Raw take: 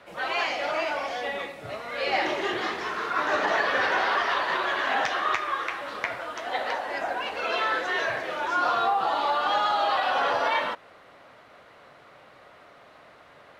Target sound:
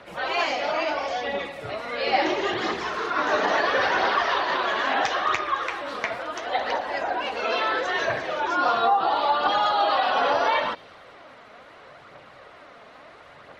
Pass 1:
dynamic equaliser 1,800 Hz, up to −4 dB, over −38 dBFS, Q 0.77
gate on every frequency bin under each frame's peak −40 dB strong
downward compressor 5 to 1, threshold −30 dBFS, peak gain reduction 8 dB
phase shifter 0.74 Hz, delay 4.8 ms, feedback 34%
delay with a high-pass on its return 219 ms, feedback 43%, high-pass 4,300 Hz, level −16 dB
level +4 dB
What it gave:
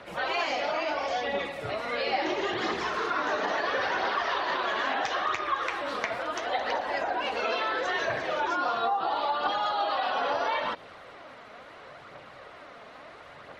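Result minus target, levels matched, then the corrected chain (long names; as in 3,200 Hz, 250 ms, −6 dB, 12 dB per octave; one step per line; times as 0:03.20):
downward compressor: peak gain reduction +8 dB
dynamic equaliser 1,800 Hz, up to −4 dB, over −38 dBFS, Q 0.77
gate on every frequency bin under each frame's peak −40 dB strong
phase shifter 0.74 Hz, delay 4.8 ms, feedback 34%
delay with a high-pass on its return 219 ms, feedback 43%, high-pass 4,300 Hz, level −16 dB
level +4 dB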